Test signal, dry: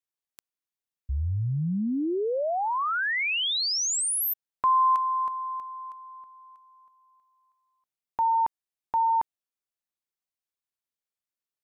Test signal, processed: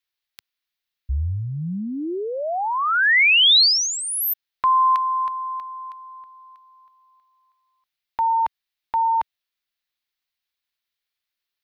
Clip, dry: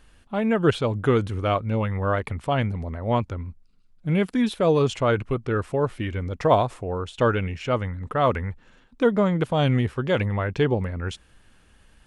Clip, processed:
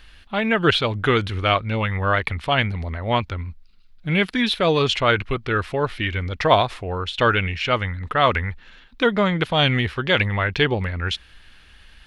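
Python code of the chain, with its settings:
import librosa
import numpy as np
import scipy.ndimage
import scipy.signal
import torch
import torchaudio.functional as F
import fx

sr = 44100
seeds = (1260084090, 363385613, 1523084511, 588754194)

y = fx.graphic_eq(x, sr, hz=(125, 250, 500, 1000, 2000, 4000, 8000), db=(-7, -6, -6, -3, 4, 8, -10))
y = F.gain(torch.from_numpy(y), 7.5).numpy()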